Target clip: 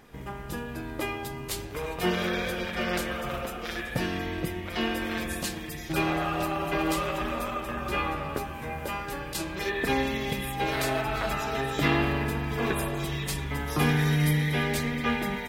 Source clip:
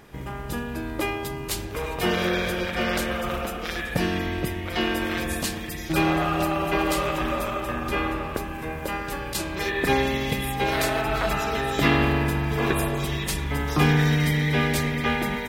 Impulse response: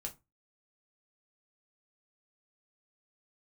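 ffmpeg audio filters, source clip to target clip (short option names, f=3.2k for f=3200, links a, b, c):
-filter_complex "[0:a]asettb=1/sr,asplit=3[a][b][c];[a]atrim=end=13.664[d];[b]atrim=start=13.66:end=14.63,asetpts=PTS-STARTPTS,afade=t=in:d=0.004:c=qsin,afade=t=out:st=0.966:d=0.004:c=qsin,equalizer=f=11k:t=o:w=0.33:g=12[e];[c]atrim=start=14.626[f];[d][e]acrossfade=d=0.004:c1=hsin:c2=qsin[g];[g][f]acrossfade=d=0.004:c1=qsin:c2=hsin,flanger=delay=3.8:depth=5:regen=62:speed=0.4:shape=triangular,asettb=1/sr,asplit=3[h][i][j];[h]atrim=end=7.764[k];[i]atrim=start=7.76:end=9.05,asetpts=PTS-STARTPTS,afade=t=in:d=0.004:c=qsin,afade=t=out:st=1.286:d=0.004:c=qsin,asplit=2[l][m];[m]adelay=14,volume=-4dB[n];[l][n]amix=inputs=2:normalize=0,atrim=end_sample=56889[o];[j]atrim=start=9.046[p];[k][o]acrossfade=d=0.004:c1=hsin:c2=qsin[q];[q][p]acrossfade=d=0.004:c1=qsin:c2=hsin"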